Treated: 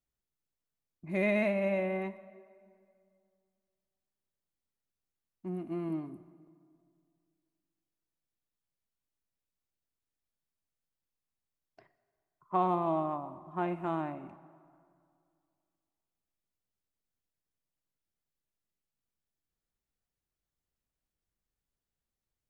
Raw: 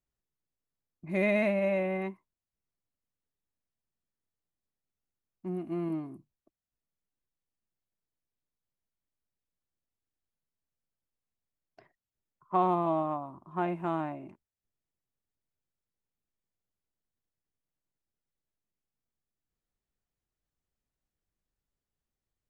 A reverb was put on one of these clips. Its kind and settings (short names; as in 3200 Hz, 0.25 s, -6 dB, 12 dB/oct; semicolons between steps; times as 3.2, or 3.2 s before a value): plate-style reverb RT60 2.3 s, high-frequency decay 0.65×, DRR 14 dB; gain -2 dB